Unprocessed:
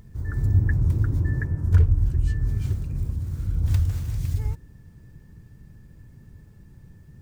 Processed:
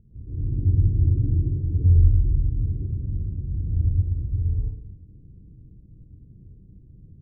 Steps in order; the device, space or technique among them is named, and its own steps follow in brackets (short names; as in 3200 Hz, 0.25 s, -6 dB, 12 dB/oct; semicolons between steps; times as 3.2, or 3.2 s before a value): next room (LPF 410 Hz 24 dB/oct; reverb RT60 0.65 s, pre-delay 96 ms, DRR -7.5 dB); gain -8 dB